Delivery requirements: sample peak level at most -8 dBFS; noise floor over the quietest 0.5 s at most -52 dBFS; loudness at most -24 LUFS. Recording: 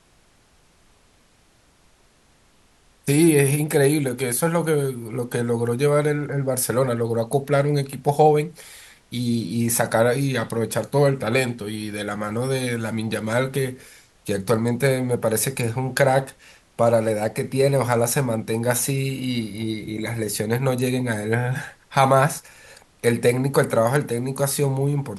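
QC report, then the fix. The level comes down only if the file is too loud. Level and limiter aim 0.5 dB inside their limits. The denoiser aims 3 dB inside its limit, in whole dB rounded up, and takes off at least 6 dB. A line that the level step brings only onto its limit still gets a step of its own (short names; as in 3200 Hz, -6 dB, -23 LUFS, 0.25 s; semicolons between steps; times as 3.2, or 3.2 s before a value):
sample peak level -4.0 dBFS: fail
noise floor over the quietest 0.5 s -58 dBFS: OK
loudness -22.0 LUFS: fail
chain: gain -2.5 dB; limiter -8.5 dBFS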